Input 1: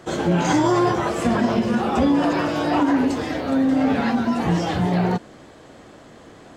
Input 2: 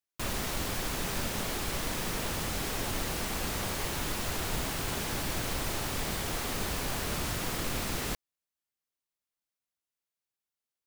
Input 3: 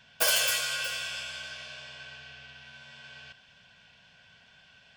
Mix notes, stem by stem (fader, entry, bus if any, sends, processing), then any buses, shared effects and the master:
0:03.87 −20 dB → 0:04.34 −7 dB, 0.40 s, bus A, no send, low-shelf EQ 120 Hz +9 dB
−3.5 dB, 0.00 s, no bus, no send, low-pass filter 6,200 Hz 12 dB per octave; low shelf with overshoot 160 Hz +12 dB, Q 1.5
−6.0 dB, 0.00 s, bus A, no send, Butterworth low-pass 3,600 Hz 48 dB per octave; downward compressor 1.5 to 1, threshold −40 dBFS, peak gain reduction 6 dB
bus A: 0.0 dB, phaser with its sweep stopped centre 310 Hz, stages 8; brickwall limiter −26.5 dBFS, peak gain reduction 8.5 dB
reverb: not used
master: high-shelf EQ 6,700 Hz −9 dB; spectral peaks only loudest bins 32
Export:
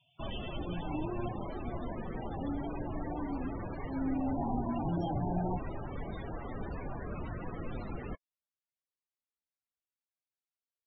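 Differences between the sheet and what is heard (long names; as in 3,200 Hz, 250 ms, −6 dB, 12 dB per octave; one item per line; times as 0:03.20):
stem 2: missing low shelf with overshoot 160 Hz +12 dB, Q 1.5
master: missing high-shelf EQ 6,700 Hz −9 dB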